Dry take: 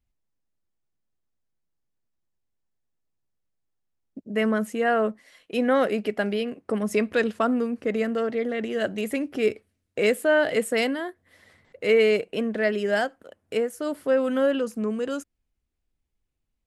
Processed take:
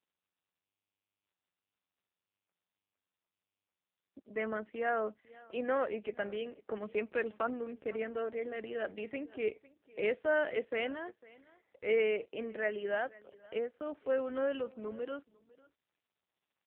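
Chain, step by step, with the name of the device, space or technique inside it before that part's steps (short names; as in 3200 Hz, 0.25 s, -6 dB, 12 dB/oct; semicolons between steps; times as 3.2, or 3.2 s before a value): satellite phone (BPF 340–3300 Hz; echo 0.502 s -21.5 dB; gain -8.5 dB; AMR-NB 5.9 kbps 8000 Hz)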